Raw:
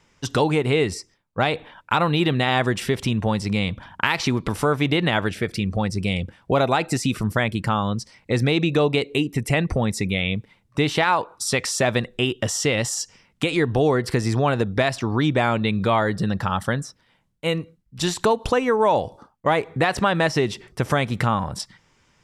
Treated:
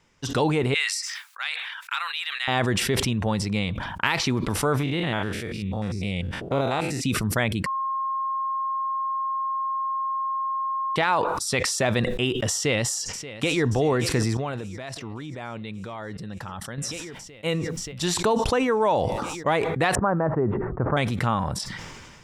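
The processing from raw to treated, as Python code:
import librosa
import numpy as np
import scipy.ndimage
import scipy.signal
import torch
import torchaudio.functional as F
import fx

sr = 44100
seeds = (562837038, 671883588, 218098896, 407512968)

y = fx.highpass(x, sr, hz=1400.0, slope=24, at=(0.74, 2.48))
y = fx.spec_steps(y, sr, hold_ms=100, at=(4.79, 7.0), fade=0.02)
y = fx.echo_throw(y, sr, start_s=12.55, length_s=1.11, ms=580, feedback_pct=75, wet_db=-15.0)
y = fx.level_steps(y, sr, step_db=16, at=(14.37, 16.78))
y = fx.steep_lowpass(y, sr, hz=1400.0, slope=36, at=(19.95, 20.97))
y = fx.edit(y, sr, fx.bleep(start_s=7.66, length_s=3.3, hz=1070.0, db=-20.5), tone=tone)
y = fx.sustainer(y, sr, db_per_s=31.0)
y = y * 10.0 ** (-3.5 / 20.0)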